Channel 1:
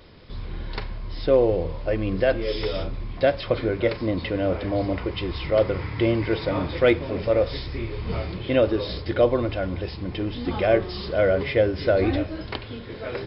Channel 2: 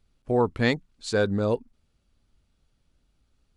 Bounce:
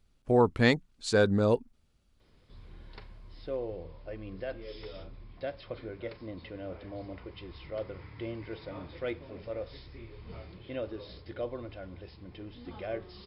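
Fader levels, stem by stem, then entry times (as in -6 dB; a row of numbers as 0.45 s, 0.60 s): -17.0 dB, -0.5 dB; 2.20 s, 0.00 s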